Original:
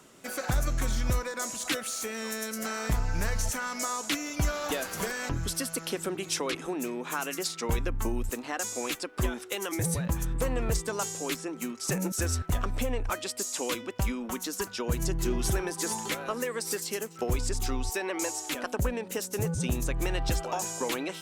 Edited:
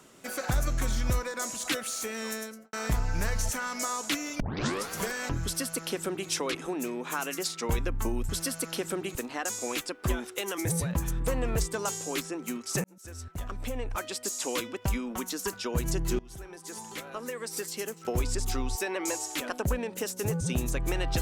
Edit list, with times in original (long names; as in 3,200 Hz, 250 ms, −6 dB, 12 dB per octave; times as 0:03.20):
0:02.31–0:02.73: fade out and dull
0:04.40: tape start 0.52 s
0:05.43–0:06.29: duplicate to 0:08.29
0:11.98–0:13.45: fade in
0:15.33–0:17.35: fade in, from −23 dB